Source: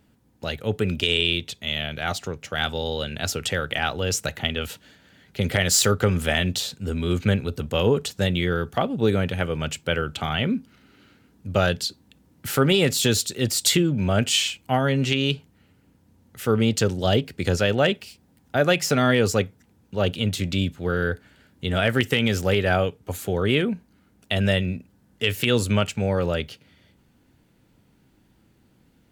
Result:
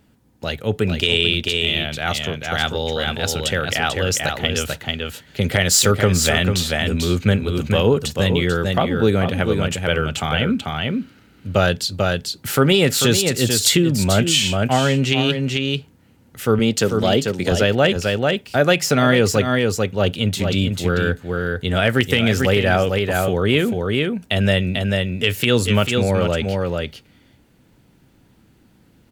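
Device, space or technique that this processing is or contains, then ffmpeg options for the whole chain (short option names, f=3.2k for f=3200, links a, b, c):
ducked delay: -filter_complex "[0:a]asettb=1/sr,asplit=3[a][b][c];[a]atrim=end=16.594[d];[b]atrim=start=16.59:end=17.52,asetpts=PTS-STARTPTS,afade=t=in:d=0.004:c=qsin,afade=t=out:st=0.926:d=0.004:c=qsin,highpass=140[e];[c]atrim=start=17.516[f];[d][e]acrossfade=d=0.004:c1=hsin:c2=qsin[g];[g][f]acrossfade=d=0.004:c1=qsin:c2=hsin,asplit=3[h][i][j];[i]adelay=442,volume=-3dB[k];[j]apad=whole_len=1303619[l];[k][l]sidechaincompress=threshold=-23dB:ratio=8:attack=12:release=169[m];[h][m]amix=inputs=2:normalize=0,volume=4dB"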